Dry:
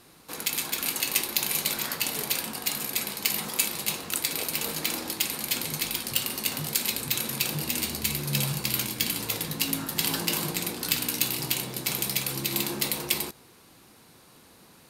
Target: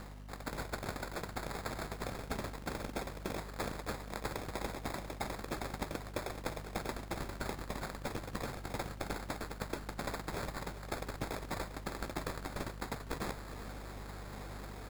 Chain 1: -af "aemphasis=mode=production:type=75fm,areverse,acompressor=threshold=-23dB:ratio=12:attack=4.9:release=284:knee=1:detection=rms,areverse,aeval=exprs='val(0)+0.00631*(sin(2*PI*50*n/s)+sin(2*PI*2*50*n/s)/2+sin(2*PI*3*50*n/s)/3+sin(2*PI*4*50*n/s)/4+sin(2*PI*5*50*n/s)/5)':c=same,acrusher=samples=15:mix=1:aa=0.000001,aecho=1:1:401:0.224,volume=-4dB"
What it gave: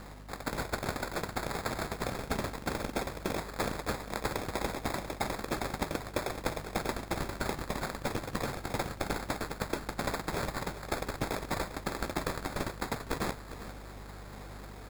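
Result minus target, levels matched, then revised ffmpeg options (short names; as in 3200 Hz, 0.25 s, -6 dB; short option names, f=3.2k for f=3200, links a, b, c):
compressor: peak gain reduction -6 dB
-af "aemphasis=mode=production:type=75fm,areverse,acompressor=threshold=-29.5dB:ratio=12:attack=4.9:release=284:knee=1:detection=rms,areverse,aeval=exprs='val(0)+0.00631*(sin(2*PI*50*n/s)+sin(2*PI*2*50*n/s)/2+sin(2*PI*3*50*n/s)/3+sin(2*PI*4*50*n/s)/4+sin(2*PI*5*50*n/s)/5)':c=same,acrusher=samples=15:mix=1:aa=0.000001,aecho=1:1:401:0.224,volume=-4dB"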